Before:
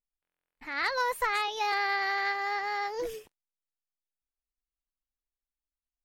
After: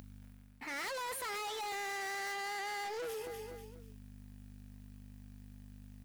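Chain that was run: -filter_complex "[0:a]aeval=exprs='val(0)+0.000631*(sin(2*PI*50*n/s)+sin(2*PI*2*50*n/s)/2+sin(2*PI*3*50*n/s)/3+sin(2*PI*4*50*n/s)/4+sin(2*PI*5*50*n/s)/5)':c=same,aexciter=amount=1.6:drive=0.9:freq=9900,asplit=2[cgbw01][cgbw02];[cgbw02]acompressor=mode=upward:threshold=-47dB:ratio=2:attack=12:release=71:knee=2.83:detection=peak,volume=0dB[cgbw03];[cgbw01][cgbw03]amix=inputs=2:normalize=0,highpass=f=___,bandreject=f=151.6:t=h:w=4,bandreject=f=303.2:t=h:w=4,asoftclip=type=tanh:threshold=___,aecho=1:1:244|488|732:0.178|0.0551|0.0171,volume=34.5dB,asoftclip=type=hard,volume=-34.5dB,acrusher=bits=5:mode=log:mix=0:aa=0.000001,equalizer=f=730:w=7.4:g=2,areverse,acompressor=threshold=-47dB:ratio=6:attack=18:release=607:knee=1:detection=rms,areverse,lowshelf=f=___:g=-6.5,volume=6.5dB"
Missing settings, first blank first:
42, -26dB, 76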